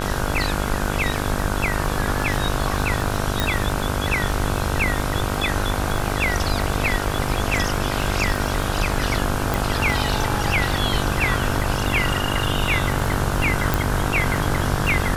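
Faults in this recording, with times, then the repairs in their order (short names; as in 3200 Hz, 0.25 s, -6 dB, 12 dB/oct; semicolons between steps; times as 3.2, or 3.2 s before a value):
buzz 50 Hz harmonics 32 -26 dBFS
crackle 57/s -27 dBFS
3.4 pop
9.54 pop
13.74 pop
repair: de-click; de-hum 50 Hz, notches 32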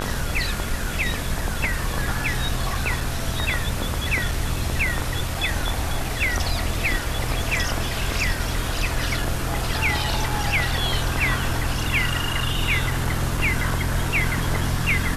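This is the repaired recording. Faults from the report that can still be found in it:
3.4 pop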